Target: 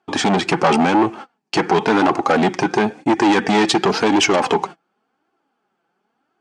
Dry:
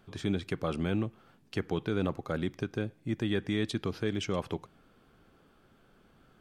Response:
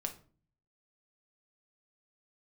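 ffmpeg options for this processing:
-af "agate=range=0.0224:threshold=0.00316:ratio=16:detection=peak,flanger=delay=2.6:depth=3.5:regen=32:speed=0.94:shape=triangular,asoftclip=type=tanh:threshold=0.0126,highpass=280,equalizer=f=550:t=q:w=4:g=-5,equalizer=f=820:t=q:w=4:g=10,equalizer=f=3600:t=q:w=4:g=-6,lowpass=f=8100:w=0.5412,lowpass=f=8100:w=1.3066,alimiter=level_in=53.1:limit=0.891:release=50:level=0:latency=1,volume=0.631"

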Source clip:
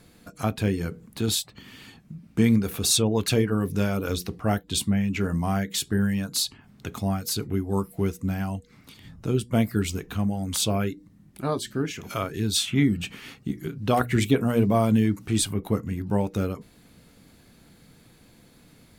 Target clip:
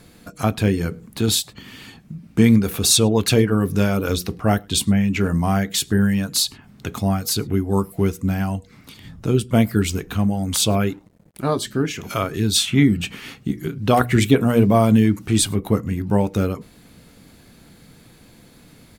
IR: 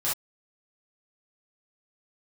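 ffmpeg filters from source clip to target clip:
-filter_complex "[0:a]asettb=1/sr,asplit=3[s0][s1][s2];[s0]atrim=end=10.894[s3];[s1]atrim=start=10.89:end=11.57,asetpts=PTS-STARTPTS,afade=t=in:d=0.004:c=qsin,afade=t=out:st=0.676:d=0.004:c=qsin,aeval=exprs='sgn(val(0))*max(abs(val(0))-0.00178,0)':c=same[s4];[s2]atrim=start=11.566[s5];[s3][s4]acrossfade=d=0.004:c1=hsin:c2=qsin[s6];[s6][s5]acrossfade=d=0.004:c1=qsin:c2=hsin,asplit=2[s7][s8];[s8]adelay=105,volume=0.0355,highshelf=f=4000:g=-2.36[s9];[s7][s9]amix=inputs=2:normalize=0,volume=2"

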